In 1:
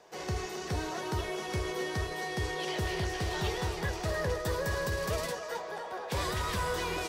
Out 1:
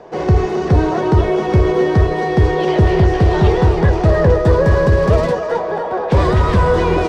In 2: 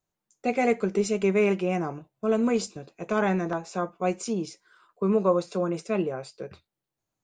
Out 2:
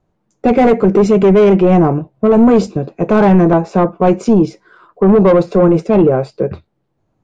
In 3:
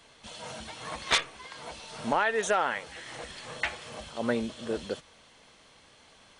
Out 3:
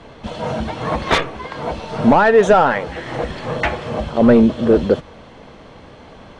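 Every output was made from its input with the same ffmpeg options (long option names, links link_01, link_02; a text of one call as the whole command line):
ffmpeg -i in.wav -af "asoftclip=type=tanh:threshold=-22dB,tiltshelf=frequency=1200:gain=8,adynamicsmooth=sensitivity=2.5:basefreq=5500,apsyclip=20dB,volume=-4.5dB" out.wav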